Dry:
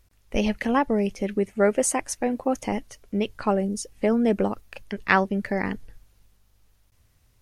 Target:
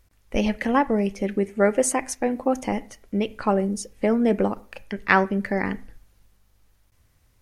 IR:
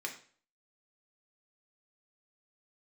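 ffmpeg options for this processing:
-filter_complex "[0:a]asplit=2[s0][s1];[1:a]atrim=start_sample=2205,lowpass=2900[s2];[s1][s2]afir=irnorm=-1:irlink=0,volume=0.316[s3];[s0][s3]amix=inputs=2:normalize=0"

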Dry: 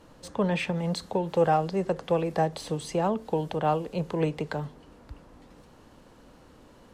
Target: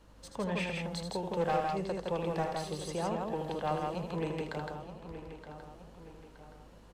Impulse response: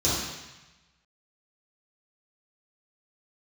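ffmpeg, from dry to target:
-filter_complex "[0:a]asplit=2[s0][s1];[s1]adelay=921,lowpass=f=4100:p=1,volume=0.282,asplit=2[s2][s3];[s3]adelay=921,lowpass=f=4100:p=1,volume=0.44,asplit=2[s4][s5];[s5]adelay=921,lowpass=f=4100:p=1,volume=0.44,asplit=2[s6][s7];[s7]adelay=921,lowpass=f=4100:p=1,volume=0.44,asplit=2[s8][s9];[s9]adelay=921,lowpass=f=4100:p=1,volume=0.44[s10];[s2][s4][s6][s8][s10]amix=inputs=5:normalize=0[s11];[s0][s11]amix=inputs=2:normalize=0,asoftclip=type=hard:threshold=0.15,aeval=exprs='val(0)+0.00224*(sin(2*PI*50*n/s)+sin(2*PI*2*50*n/s)/2+sin(2*PI*3*50*n/s)/3+sin(2*PI*4*50*n/s)/4+sin(2*PI*5*50*n/s)/5)':c=same,equalizer=f=260:w=0.3:g=-4,asplit=2[s12][s13];[s13]aecho=0:1:78.72|163.3:0.447|0.708[s14];[s12][s14]amix=inputs=2:normalize=0,volume=0.501"

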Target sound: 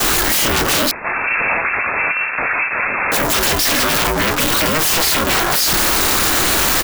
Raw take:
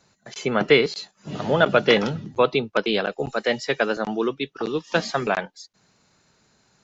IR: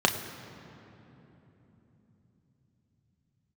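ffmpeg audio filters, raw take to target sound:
-filter_complex "[0:a]aeval=exprs='val(0)+0.5*0.106*sgn(val(0))':c=same,aemphasis=mode=production:type=75fm,agate=range=0.0224:threshold=0.316:ratio=3:detection=peak,equalizer=f=1100:w=0.64:g=14.5,acompressor=threshold=0.178:ratio=6,aeval=exprs='0.531*sin(PI/2*7.94*val(0)/0.531)':c=same,aeval=exprs='val(0)*sin(2*PI*160*n/s)':c=same,asplit=2[s0][s1];[s1]adelay=24,volume=0.282[s2];[s0][s2]amix=inputs=2:normalize=0,asettb=1/sr,asplit=3[s3][s4][s5];[s3]atrim=end=0.914[s6];[s4]atrim=start=0.91:end=3.12,asetpts=PTS-STARTPTS,afade=t=in:d=0.004:c=qsin,afade=t=out:st=2.206:d=0.004:c=qsin,lowpass=f=2300:t=q:w=0.5098,lowpass=f=2300:t=q:w=0.6013,lowpass=f=2300:t=q:w=0.9,lowpass=f=2300:t=q:w=2.563,afreqshift=-2700[s7];[s5]atrim=start=3.116[s8];[s6][s7]acrossfade=d=0.004:c1=hsin:c2=qsin[s9];[s9][s8]acrossfade=d=0.004:c1=qsin:c2=hsin,volume=0.631"

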